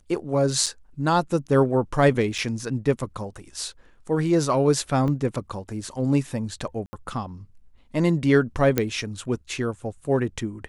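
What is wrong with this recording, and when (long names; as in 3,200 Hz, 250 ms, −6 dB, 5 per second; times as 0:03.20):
0:00.66–0:00.67: drop-out 5.8 ms
0:02.38–0:02.39: drop-out 5.3 ms
0:05.08: drop-out 2.4 ms
0:06.86–0:06.93: drop-out 70 ms
0:08.78: click −6 dBFS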